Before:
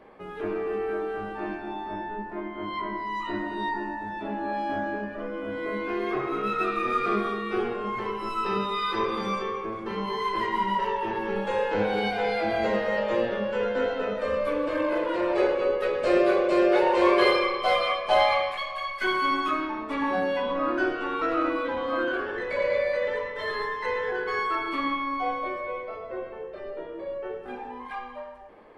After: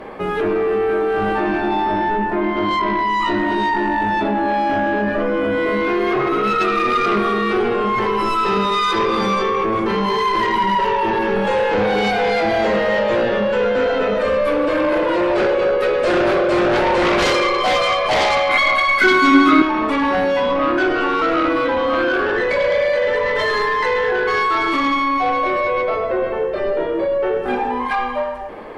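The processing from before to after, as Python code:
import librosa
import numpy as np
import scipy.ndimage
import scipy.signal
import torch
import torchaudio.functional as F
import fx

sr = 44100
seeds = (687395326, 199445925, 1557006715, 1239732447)

p1 = fx.over_compress(x, sr, threshold_db=-35.0, ratio=-1.0)
p2 = x + F.gain(torch.from_numpy(p1), -2.0).numpy()
p3 = fx.fold_sine(p2, sr, drive_db=10, ceiling_db=-8.0)
p4 = fx.small_body(p3, sr, hz=(270.0, 1400.0, 2100.0, 3800.0), ring_ms=35, db=14, at=(18.49, 19.62))
y = F.gain(torch.from_numpy(p4), -4.5).numpy()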